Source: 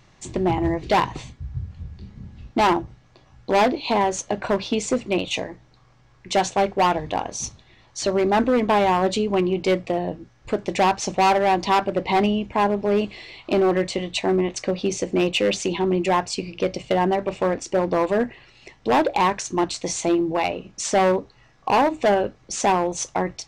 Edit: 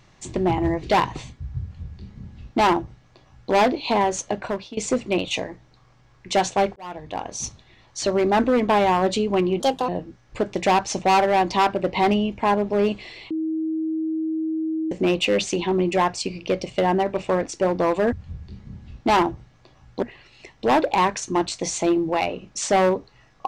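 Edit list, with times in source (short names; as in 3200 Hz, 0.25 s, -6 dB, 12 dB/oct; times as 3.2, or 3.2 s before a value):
1.63–3.53 copy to 18.25
4.27–4.77 fade out, to -18 dB
6.76–7.46 fade in
9.6–10.01 speed 144%
13.43–15.04 bleep 318 Hz -22 dBFS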